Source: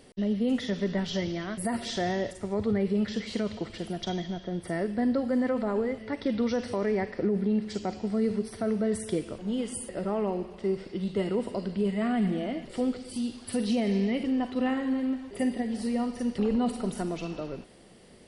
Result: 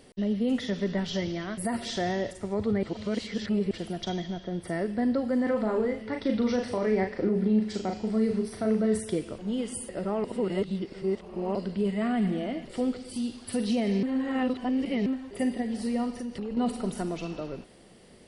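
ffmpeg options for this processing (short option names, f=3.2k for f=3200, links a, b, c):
-filter_complex "[0:a]asettb=1/sr,asplit=3[a][b][c];[a]atrim=end=5.434[d];[b]atrim=start=5.43:end=9,asetpts=PTS-STARTPTS,afade=t=in:d=0.004:c=qsin,afade=t=out:st=3.566:d=0.004:c=qsin,asplit=2[e][f];[f]adelay=37,volume=-5dB[g];[e][g]amix=inputs=2:normalize=0,atrim=end_sample=157437[h];[c]atrim=start=8.996[i];[d][h]acrossfade=d=0.004:c1=hsin:c2=qsin[j];[j][i]acrossfade=d=0.004:c1=qsin:c2=hsin,asettb=1/sr,asplit=3[k][l][m];[k]atrim=end=16.104[n];[l]atrim=start=16.1:end=16.57,asetpts=PTS-STARTPTS,afade=t=in:d=0.004:c=qsin,afade=t=out:st=0.466:d=0.004:c=qsin,acompressor=threshold=-32dB:ratio=4:attack=3.2:release=140:knee=1:detection=peak[o];[m]atrim=start=16.566[p];[n][o]acrossfade=d=0.004:c1=hsin:c2=qsin[q];[q][p]acrossfade=d=0.004:c1=qsin:c2=hsin,asplit=7[r][s][t][u][v][w][x];[r]atrim=end=2.832[y];[s]atrim=start=2.828:end=3.712,asetpts=PTS-STARTPTS,areverse[z];[t]atrim=start=3.708:end=10.242[aa];[u]atrim=start=10.238:end=11.552,asetpts=PTS-STARTPTS,areverse[ab];[v]atrim=start=11.548:end=14.032[ac];[w]atrim=start=14.028:end=15.062,asetpts=PTS-STARTPTS,areverse[ad];[x]atrim=start=15.058[ae];[y][z]acrossfade=d=0.004:c1=hsin:c2=hsin[af];[af][aa]acrossfade=d=0.004:c1=hsin:c2=hsin[ag];[ag][ab]acrossfade=d=0.004:c1=hsin:c2=hsin[ah];[ah][ac]acrossfade=d=0.004:c1=hsin:c2=hsin[ai];[ai][ad]acrossfade=d=0.004:c1=hsin:c2=hsin[aj];[aj][ae]acrossfade=d=0.004:c1=hsin:c2=hsin"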